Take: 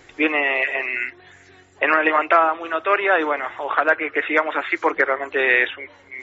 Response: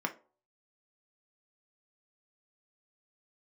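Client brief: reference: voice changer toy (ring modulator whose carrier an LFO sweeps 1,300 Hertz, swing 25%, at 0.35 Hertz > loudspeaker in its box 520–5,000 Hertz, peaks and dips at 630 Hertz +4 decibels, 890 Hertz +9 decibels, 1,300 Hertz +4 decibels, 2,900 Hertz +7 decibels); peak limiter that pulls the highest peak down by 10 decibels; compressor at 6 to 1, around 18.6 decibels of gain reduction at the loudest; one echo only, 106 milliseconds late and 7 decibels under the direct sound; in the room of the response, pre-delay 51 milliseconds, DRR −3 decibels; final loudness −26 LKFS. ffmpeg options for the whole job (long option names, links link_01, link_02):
-filter_complex "[0:a]acompressor=threshold=-33dB:ratio=6,alimiter=level_in=2dB:limit=-24dB:level=0:latency=1,volume=-2dB,aecho=1:1:106:0.447,asplit=2[link_01][link_02];[1:a]atrim=start_sample=2205,adelay=51[link_03];[link_02][link_03]afir=irnorm=-1:irlink=0,volume=-2.5dB[link_04];[link_01][link_04]amix=inputs=2:normalize=0,aeval=exprs='val(0)*sin(2*PI*1300*n/s+1300*0.25/0.35*sin(2*PI*0.35*n/s))':channel_layout=same,highpass=520,equalizer=frequency=630:width_type=q:width=4:gain=4,equalizer=frequency=890:width_type=q:width=4:gain=9,equalizer=frequency=1300:width_type=q:width=4:gain=4,equalizer=frequency=2900:width_type=q:width=4:gain=7,lowpass=frequency=5000:width=0.5412,lowpass=frequency=5000:width=1.3066,volume=5dB"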